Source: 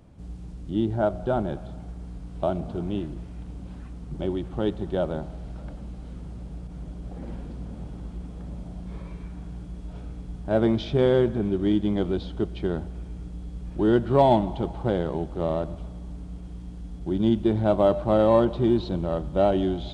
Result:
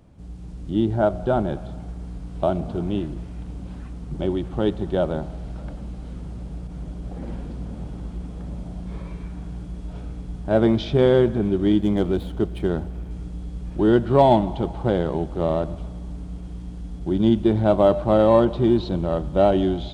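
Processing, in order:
0:11.78–0:13.11: running median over 9 samples
automatic gain control gain up to 4 dB

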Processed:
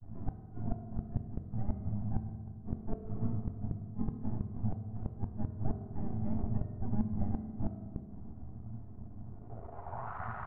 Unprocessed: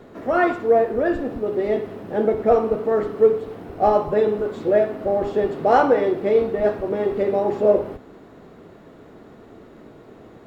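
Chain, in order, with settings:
Chebyshev band-stop filter 120–720 Hz, order 5
high-shelf EQ 2,900 Hz −7.5 dB
downward compressor 10 to 1, threshold −30 dBFS, peak gain reduction 17 dB
granular cloud 105 ms, grains 31 per second, spray 11 ms, pitch spread up and down by 0 semitones
half-wave rectification
low-pass filter sweep 240 Hz → 1,400 Hz, 0:09.26–0:10.19
gate with flip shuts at −37 dBFS, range −41 dB
high-frequency loss of the air 280 metres
slap from a distant wall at 110 metres, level −22 dB
convolution reverb RT60 1.9 s, pre-delay 4 ms, DRR 6 dB
level +17.5 dB

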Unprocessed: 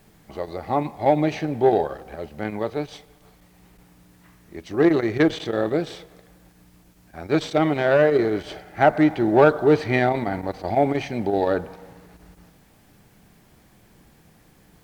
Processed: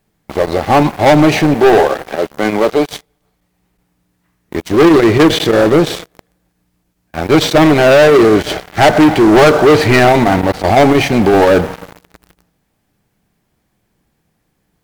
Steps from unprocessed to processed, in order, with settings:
0:01.54–0:02.91: high-pass filter 230 Hz 12 dB per octave
leveller curve on the samples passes 5

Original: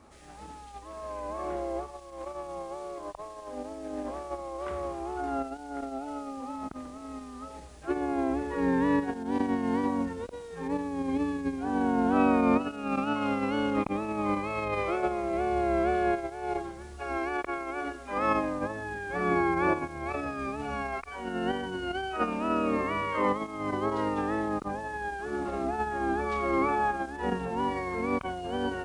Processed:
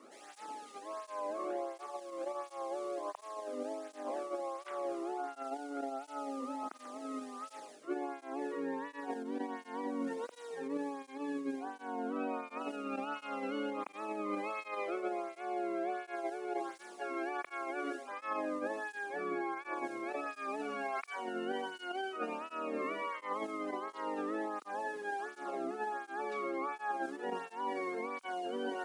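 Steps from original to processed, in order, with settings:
high-pass filter 230 Hz 24 dB per octave
reversed playback
downward compressor 6 to 1, threshold −35 dBFS, peak gain reduction 14 dB
reversed playback
through-zero flanger with one copy inverted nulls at 1.4 Hz, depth 1.3 ms
level +2.5 dB

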